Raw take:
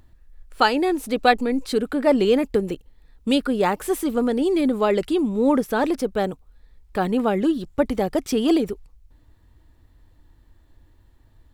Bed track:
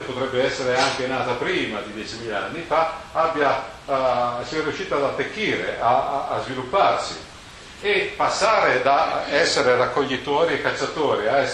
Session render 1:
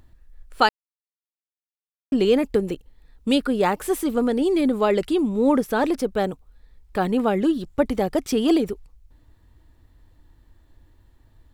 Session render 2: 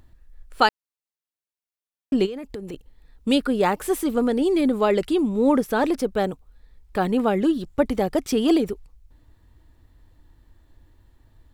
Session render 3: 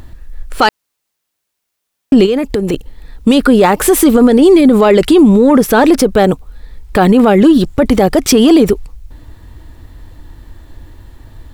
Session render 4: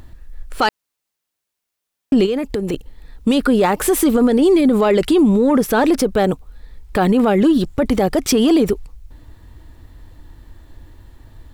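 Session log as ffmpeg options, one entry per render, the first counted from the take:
ffmpeg -i in.wav -filter_complex "[0:a]asplit=3[link_01][link_02][link_03];[link_01]atrim=end=0.69,asetpts=PTS-STARTPTS,afade=type=out:start_time=0.686:duration=0.004:curve=hsin[link_04];[link_02]atrim=start=0.69:end=2.12,asetpts=PTS-STARTPTS,volume=0[link_05];[link_03]atrim=start=2.12,asetpts=PTS-STARTPTS,afade=type=in:duration=0.004:curve=hsin[link_06];[link_04][link_05][link_06]concat=n=3:v=0:a=1" out.wav
ffmpeg -i in.wav -filter_complex "[0:a]asplit=3[link_01][link_02][link_03];[link_01]afade=type=out:start_time=2.25:duration=0.02[link_04];[link_02]acompressor=threshold=-31dB:ratio=5:attack=3.2:release=140:knee=1:detection=peak,afade=type=in:start_time=2.25:duration=0.02,afade=type=out:start_time=2.73:duration=0.02[link_05];[link_03]afade=type=in:start_time=2.73:duration=0.02[link_06];[link_04][link_05][link_06]amix=inputs=3:normalize=0" out.wav
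ffmpeg -i in.wav -af "acontrast=66,alimiter=level_in=13dB:limit=-1dB:release=50:level=0:latency=1" out.wav
ffmpeg -i in.wav -af "volume=-6.5dB" out.wav

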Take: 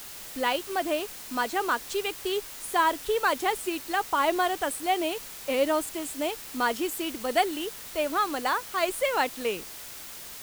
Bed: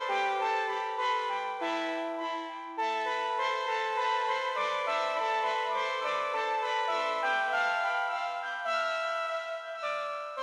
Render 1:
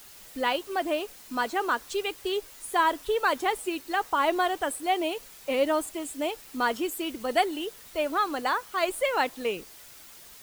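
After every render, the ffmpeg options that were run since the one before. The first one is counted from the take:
ffmpeg -i in.wav -af "afftdn=noise_reduction=8:noise_floor=-42" out.wav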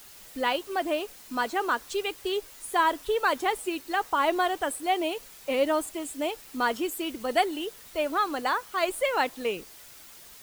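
ffmpeg -i in.wav -af anull out.wav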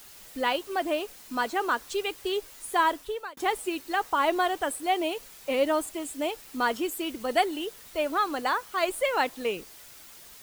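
ffmpeg -i in.wav -filter_complex "[0:a]asplit=2[link_01][link_02];[link_01]atrim=end=3.37,asetpts=PTS-STARTPTS,afade=type=out:start_time=2.86:duration=0.51[link_03];[link_02]atrim=start=3.37,asetpts=PTS-STARTPTS,afade=type=in:duration=0.004:curve=hsin[link_04];[link_03][link_04]concat=n=2:v=0:a=1" out.wav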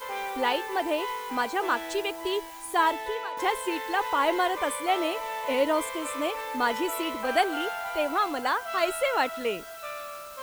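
ffmpeg -i in.wav -i bed.wav -filter_complex "[1:a]volume=-4dB[link_01];[0:a][link_01]amix=inputs=2:normalize=0" out.wav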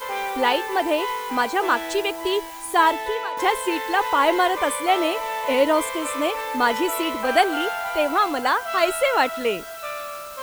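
ffmpeg -i in.wav -af "volume=6dB" out.wav

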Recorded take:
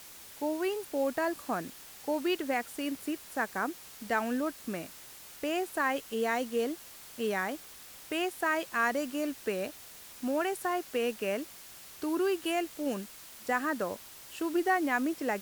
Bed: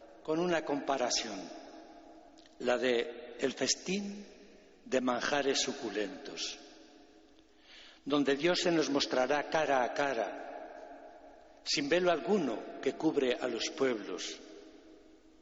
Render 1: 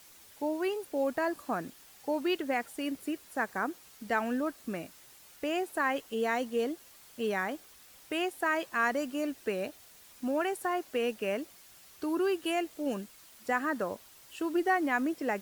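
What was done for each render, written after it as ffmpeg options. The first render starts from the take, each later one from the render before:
ffmpeg -i in.wav -af "afftdn=noise_reduction=7:noise_floor=-50" out.wav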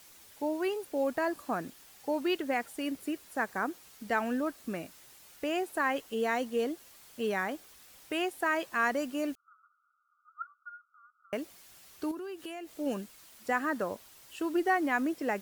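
ffmpeg -i in.wav -filter_complex "[0:a]asettb=1/sr,asplit=3[link_01][link_02][link_03];[link_01]atrim=end=9.354[link_04];[link_02]atrim=start=9.35:end=11.33,asetpts=PTS-STARTPTS,afade=type=in:duration=0.004:curve=qsin,afade=type=out:start_time=1.976:duration=0.004:curve=qsin,asuperpass=centerf=1300:order=20:qfactor=4.4[link_05];[link_03]atrim=start=11.326[link_06];[link_04][link_05]acrossfade=duration=0.004:curve1=hsin:curve2=qsin[link_07];[link_07][link_06]acrossfade=duration=0.004:curve1=qsin:curve2=hsin,asettb=1/sr,asplit=3[link_08][link_09][link_10];[link_08]atrim=end=12.114[link_11];[link_09]atrim=start=12.11:end=12.69,asetpts=PTS-STARTPTS,afade=type=in:duration=0.004:curve=qsin,afade=type=out:start_time=0.576:duration=0.004:curve=qsin,acompressor=threshold=-38dB:ratio=6:attack=3.2:release=140:knee=1:detection=peak[link_12];[link_10]atrim=start=12.686[link_13];[link_11][link_12]acrossfade=duration=0.004:curve1=hsin:curve2=qsin[link_14];[link_14][link_13]acrossfade=duration=0.004:curve1=qsin:curve2=hsin" out.wav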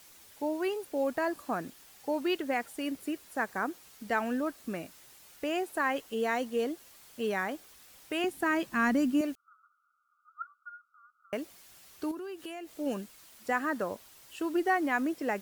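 ffmpeg -i in.wav -filter_complex "[0:a]asettb=1/sr,asplit=3[link_01][link_02][link_03];[link_01]atrim=end=8.244[link_04];[link_02]atrim=start=8.24:end=9.21,asetpts=PTS-STARTPTS,afade=type=in:duration=0.004:curve=qsin,afade=type=out:start_time=0.966:duration=0.004:curve=qsin,lowshelf=frequency=350:width_type=q:width=1.5:gain=9.5[link_05];[link_03]atrim=start=9.206[link_06];[link_04][link_05]acrossfade=duration=0.004:curve1=hsin:curve2=qsin[link_07];[link_07][link_06]acrossfade=duration=0.004:curve1=qsin:curve2=hsin" out.wav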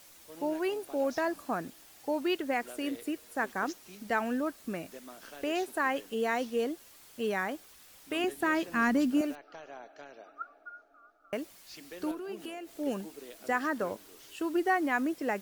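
ffmpeg -i in.wav -i bed.wav -filter_complex "[1:a]volume=-17.5dB[link_01];[0:a][link_01]amix=inputs=2:normalize=0" out.wav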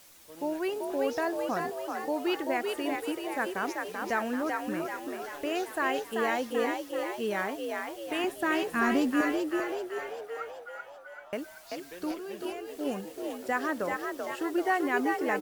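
ffmpeg -i in.wav -filter_complex "[0:a]asplit=9[link_01][link_02][link_03][link_04][link_05][link_06][link_07][link_08][link_09];[link_02]adelay=386,afreqshift=56,volume=-4dB[link_10];[link_03]adelay=772,afreqshift=112,volume=-8.9dB[link_11];[link_04]adelay=1158,afreqshift=168,volume=-13.8dB[link_12];[link_05]adelay=1544,afreqshift=224,volume=-18.6dB[link_13];[link_06]adelay=1930,afreqshift=280,volume=-23.5dB[link_14];[link_07]adelay=2316,afreqshift=336,volume=-28.4dB[link_15];[link_08]adelay=2702,afreqshift=392,volume=-33.3dB[link_16];[link_09]adelay=3088,afreqshift=448,volume=-38.2dB[link_17];[link_01][link_10][link_11][link_12][link_13][link_14][link_15][link_16][link_17]amix=inputs=9:normalize=0" out.wav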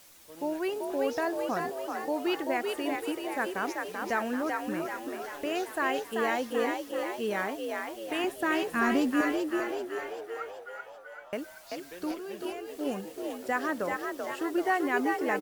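ffmpeg -i in.wav -af "aecho=1:1:746:0.0891" out.wav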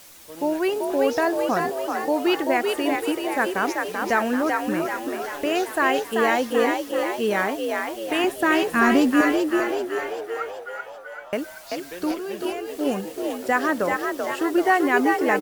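ffmpeg -i in.wav -af "volume=8.5dB" out.wav

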